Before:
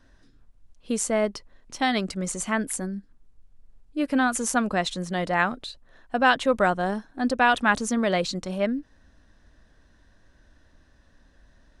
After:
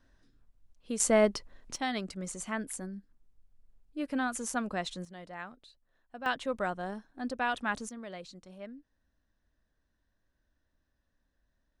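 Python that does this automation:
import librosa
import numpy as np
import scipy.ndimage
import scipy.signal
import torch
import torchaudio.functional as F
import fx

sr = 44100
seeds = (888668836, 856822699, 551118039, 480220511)

y = fx.gain(x, sr, db=fx.steps((0.0, -8.5), (1.0, 0.0), (1.76, -9.5), (5.05, -20.0), (6.26, -11.5), (7.89, -20.0)))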